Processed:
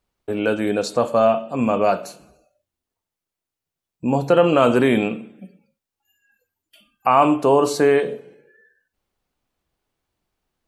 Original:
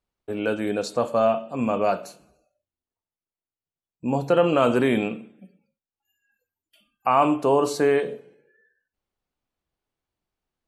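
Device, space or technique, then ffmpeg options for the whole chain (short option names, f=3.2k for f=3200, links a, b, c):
parallel compression: -filter_complex "[0:a]asplit=2[a][b];[b]acompressor=threshold=-37dB:ratio=6,volume=-4dB[c];[a][c]amix=inputs=2:normalize=0,volume=3.5dB"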